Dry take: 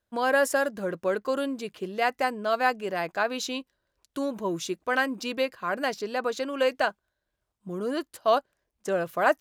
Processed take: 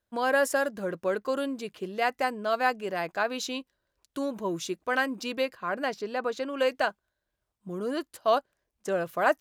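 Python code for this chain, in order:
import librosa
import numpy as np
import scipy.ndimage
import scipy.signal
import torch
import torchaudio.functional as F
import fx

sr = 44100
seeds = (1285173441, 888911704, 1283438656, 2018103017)

y = fx.high_shelf(x, sr, hz=4700.0, db=-7.5, at=(5.57, 6.57))
y = F.gain(torch.from_numpy(y), -1.5).numpy()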